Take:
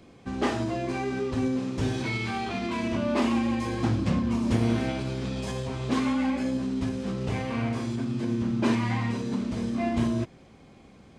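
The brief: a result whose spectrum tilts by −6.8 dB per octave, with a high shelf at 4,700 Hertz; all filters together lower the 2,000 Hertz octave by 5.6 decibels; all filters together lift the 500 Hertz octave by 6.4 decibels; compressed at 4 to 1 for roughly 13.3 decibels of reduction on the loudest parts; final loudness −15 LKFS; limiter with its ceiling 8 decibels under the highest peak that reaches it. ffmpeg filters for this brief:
ffmpeg -i in.wav -af "equalizer=frequency=500:width_type=o:gain=9,equalizer=frequency=2000:width_type=o:gain=-6.5,highshelf=frequency=4700:gain=-5.5,acompressor=threshold=-34dB:ratio=4,volume=23dB,alimiter=limit=-6.5dB:level=0:latency=1" out.wav

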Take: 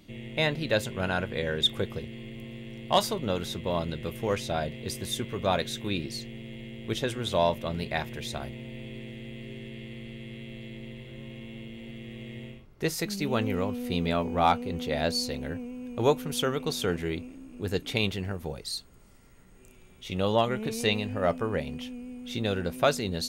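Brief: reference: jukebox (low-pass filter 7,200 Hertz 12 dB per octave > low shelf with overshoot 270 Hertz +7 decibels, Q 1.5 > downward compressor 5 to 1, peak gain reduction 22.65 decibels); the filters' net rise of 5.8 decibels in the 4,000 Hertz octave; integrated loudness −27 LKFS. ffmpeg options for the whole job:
ffmpeg -i in.wav -af "lowpass=7200,lowshelf=frequency=270:width_type=q:width=1.5:gain=7,equalizer=frequency=4000:width_type=o:gain=7,acompressor=threshold=-39dB:ratio=5,volume=14.5dB" out.wav

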